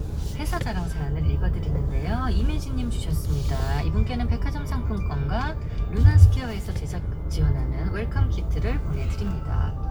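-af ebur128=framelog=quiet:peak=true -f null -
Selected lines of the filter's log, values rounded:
Integrated loudness:
  I:         -25.3 LUFS
  Threshold: -35.3 LUFS
Loudness range:
  LRA:         4.0 LU
  Threshold: -44.8 LUFS
  LRA low:   -27.0 LUFS
  LRA high:  -23.0 LUFS
True peak:
  Peak:       -2.2 dBFS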